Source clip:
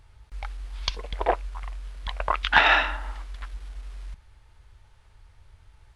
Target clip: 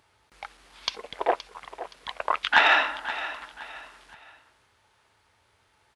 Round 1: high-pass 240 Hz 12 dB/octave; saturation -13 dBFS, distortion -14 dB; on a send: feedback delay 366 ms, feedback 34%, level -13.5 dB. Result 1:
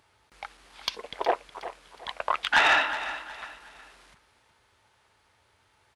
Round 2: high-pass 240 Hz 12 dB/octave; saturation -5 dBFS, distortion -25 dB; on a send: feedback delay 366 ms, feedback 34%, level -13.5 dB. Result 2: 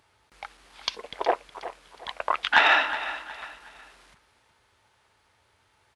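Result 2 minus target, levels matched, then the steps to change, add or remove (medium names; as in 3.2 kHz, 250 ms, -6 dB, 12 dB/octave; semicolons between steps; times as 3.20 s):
echo 155 ms early
change: feedback delay 521 ms, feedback 34%, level -13.5 dB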